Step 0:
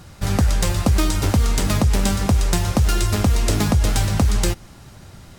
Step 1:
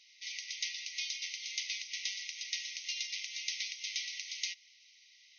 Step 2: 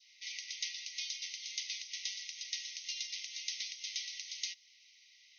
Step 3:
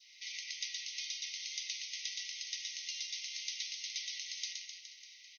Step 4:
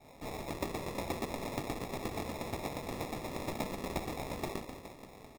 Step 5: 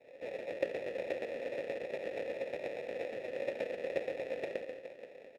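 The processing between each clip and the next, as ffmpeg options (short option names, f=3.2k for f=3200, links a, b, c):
-af "afftfilt=real='re*between(b*sr/4096,1900,6500)':imag='im*between(b*sr/4096,1900,6500)':win_size=4096:overlap=0.75,volume=-7dB"
-af "adynamicequalizer=threshold=0.00178:dfrequency=2300:dqfactor=2.3:tfrequency=2300:tqfactor=2.3:attack=5:release=100:ratio=0.375:range=3:mode=cutabove:tftype=bell,volume=-1dB"
-filter_complex "[0:a]acompressor=threshold=-51dB:ratio=1.5,asplit=2[a][b];[b]aecho=0:1:120|258|416.7|599.2|809.1:0.631|0.398|0.251|0.158|0.1[c];[a][c]amix=inputs=2:normalize=0,volume=3dB"
-af "acrusher=samples=29:mix=1:aa=0.000001,volume=3.5dB"
-filter_complex "[0:a]tremolo=f=240:d=1,asplit=3[a][b][c];[a]bandpass=f=530:t=q:w=8,volume=0dB[d];[b]bandpass=f=1.84k:t=q:w=8,volume=-6dB[e];[c]bandpass=f=2.48k:t=q:w=8,volume=-9dB[f];[d][e][f]amix=inputs=3:normalize=0,volume=15dB"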